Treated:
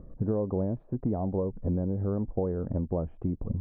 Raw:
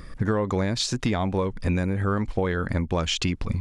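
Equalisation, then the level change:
transistor ladder low-pass 840 Hz, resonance 30%
high-frequency loss of the air 490 metres
parametric band 200 Hz +3 dB 2.8 octaves
0.0 dB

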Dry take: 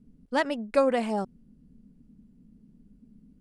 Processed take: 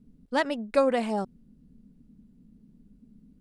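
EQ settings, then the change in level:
parametric band 3,800 Hz +4 dB 0.21 octaves
0.0 dB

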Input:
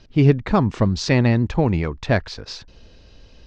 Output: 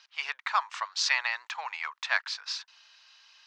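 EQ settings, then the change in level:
Butterworth high-pass 970 Hz 36 dB per octave
0.0 dB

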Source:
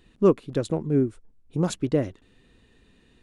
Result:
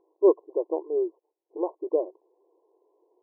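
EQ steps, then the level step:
linear-phase brick-wall band-pass 320–1,100 Hz
+1.0 dB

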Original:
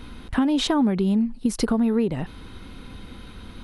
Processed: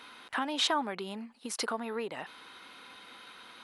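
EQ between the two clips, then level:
high-pass filter 960 Hz 12 dB per octave
spectral tilt −1.5 dB per octave
+1.0 dB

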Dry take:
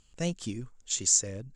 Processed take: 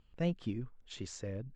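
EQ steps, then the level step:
high-frequency loss of the air 390 metres
high-shelf EQ 9,100 Hz +5.5 dB
−1.0 dB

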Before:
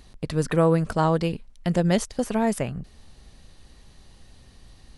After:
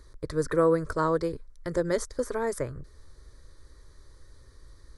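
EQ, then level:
high-shelf EQ 9,100 Hz −7.5 dB
phaser with its sweep stopped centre 750 Hz, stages 6
0.0 dB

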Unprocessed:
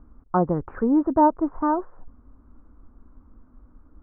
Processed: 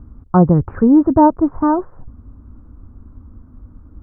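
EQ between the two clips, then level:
parametric band 100 Hz +15 dB 2.3 octaves
+4.0 dB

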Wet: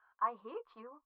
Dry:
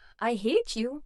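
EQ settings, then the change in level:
resonant band-pass 1,100 Hz, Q 13
high-frequency loss of the air 480 metres
+10.0 dB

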